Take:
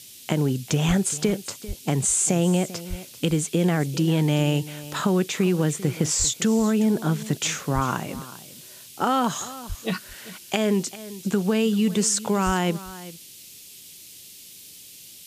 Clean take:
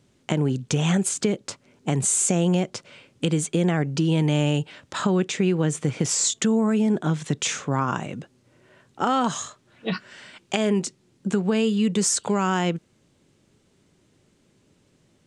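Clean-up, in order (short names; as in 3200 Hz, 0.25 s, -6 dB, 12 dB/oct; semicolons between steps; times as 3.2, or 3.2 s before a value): de-plosive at 0.87/1.67/2.89/6.18/7.74/9.68/12.45; noise print and reduce 18 dB; inverse comb 0.394 s -16.5 dB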